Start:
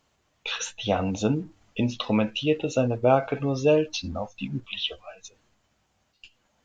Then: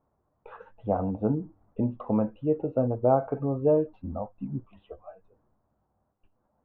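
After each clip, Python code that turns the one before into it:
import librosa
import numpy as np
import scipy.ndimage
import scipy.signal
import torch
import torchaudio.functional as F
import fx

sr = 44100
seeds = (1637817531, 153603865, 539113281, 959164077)

y = scipy.signal.sosfilt(scipy.signal.butter(4, 1100.0, 'lowpass', fs=sr, output='sos'), x)
y = F.gain(torch.from_numpy(y), -2.0).numpy()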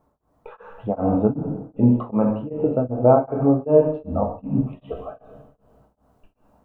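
y = fx.rider(x, sr, range_db=5, speed_s=2.0)
y = fx.rev_double_slope(y, sr, seeds[0], early_s=0.8, late_s=2.8, knee_db=-18, drr_db=1.5)
y = y * np.abs(np.cos(np.pi * 2.6 * np.arange(len(y)) / sr))
y = F.gain(torch.from_numpy(y), 8.5).numpy()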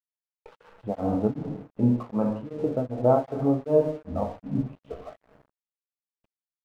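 y = np.sign(x) * np.maximum(np.abs(x) - 10.0 ** (-44.5 / 20.0), 0.0)
y = F.gain(torch.from_numpy(y), -5.5).numpy()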